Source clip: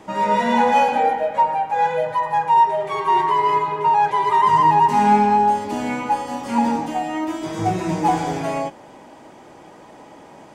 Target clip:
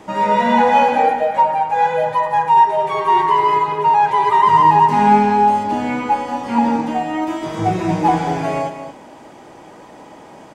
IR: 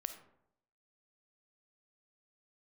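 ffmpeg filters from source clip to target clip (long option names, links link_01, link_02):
-filter_complex "[0:a]acrossover=split=4300[link_01][link_02];[link_02]acompressor=threshold=-48dB:ratio=4:attack=1:release=60[link_03];[link_01][link_03]amix=inputs=2:normalize=0,asettb=1/sr,asplit=3[link_04][link_05][link_06];[link_04]atrim=end=5.634[link_07];[link_05]atrim=start=5.63:end=7.22,asetpts=PTS-STARTPTS,afade=type=in:duration=0.004:curve=qsin,afade=type=out:start_time=1.586:duration=0.004:curve=qsin,highshelf=frequency=7000:gain=-6.5[link_08];[link_06]atrim=start=7.216[link_09];[link_07][link_08]acrossfade=duration=0.004:curve1=hsin:curve2=qsin[link_10];[link_10][link_09]acrossfade=duration=0.004:curve1=qsin:curve2=hsin,aecho=1:1:223:0.299,volume=3dB"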